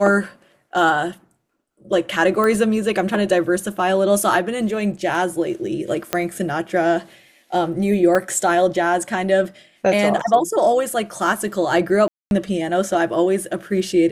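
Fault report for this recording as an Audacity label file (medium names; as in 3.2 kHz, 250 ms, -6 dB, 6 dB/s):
2.440000	2.440000	pop -9 dBFS
6.130000	6.130000	pop -3 dBFS
8.150000	8.150000	dropout 3.5 ms
12.080000	12.310000	dropout 231 ms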